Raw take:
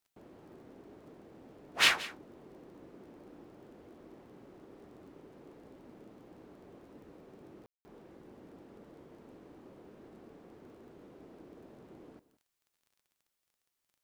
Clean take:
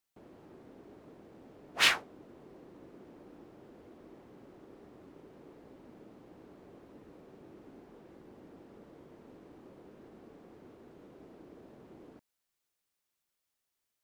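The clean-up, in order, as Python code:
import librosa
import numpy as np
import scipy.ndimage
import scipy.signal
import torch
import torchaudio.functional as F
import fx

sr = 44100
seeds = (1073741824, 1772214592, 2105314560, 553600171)

y = fx.fix_declick_ar(x, sr, threshold=6.5)
y = fx.fix_ambience(y, sr, seeds[0], print_start_s=13.27, print_end_s=13.77, start_s=7.66, end_s=7.85)
y = fx.fix_echo_inverse(y, sr, delay_ms=177, level_db=-17.5)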